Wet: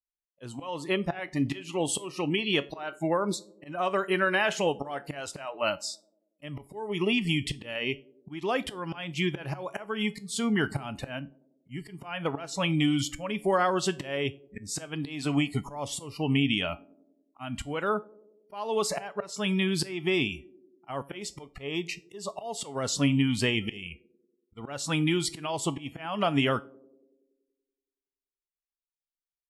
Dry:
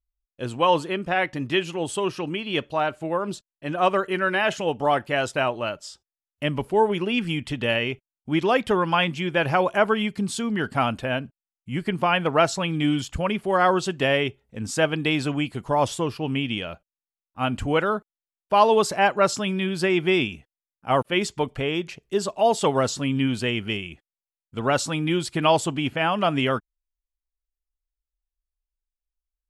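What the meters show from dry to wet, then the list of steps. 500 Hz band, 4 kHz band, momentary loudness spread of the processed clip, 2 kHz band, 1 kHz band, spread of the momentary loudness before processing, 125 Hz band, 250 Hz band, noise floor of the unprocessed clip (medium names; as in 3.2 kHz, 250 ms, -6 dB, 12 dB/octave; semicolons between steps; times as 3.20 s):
-8.0 dB, -4.0 dB, 15 LU, -6.0 dB, -10.5 dB, 9 LU, -3.5 dB, -4.0 dB, under -85 dBFS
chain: spectral noise reduction 28 dB; treble shelf 4.1 kHz +2.5 dB; compression 10:1, threshold -24 dBFS, peak gain reduction 13.5 dB; slow attack 314 ms; feedback comb 140 Hz, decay 0.27 s, harmonics all, mix 50%; band-passed feedback delay 94 ms, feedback 70%, band-pass 360 Hz, level -22 dB; trim +7.5 dB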